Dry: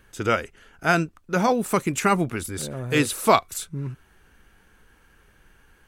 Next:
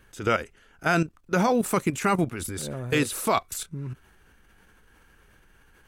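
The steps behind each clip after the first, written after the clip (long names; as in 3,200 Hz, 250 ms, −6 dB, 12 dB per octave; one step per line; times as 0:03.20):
output level in coarse steps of 12 dB
level +3 dB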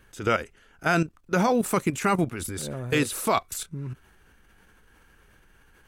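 no processing that can be heard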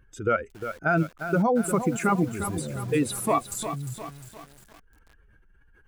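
expanding power law on the bin magnitudes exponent 1.8
tape wow and flutter 25 cents
feedback echo at a low word length 353 ms, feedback 55%, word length 7 bits, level −9 dB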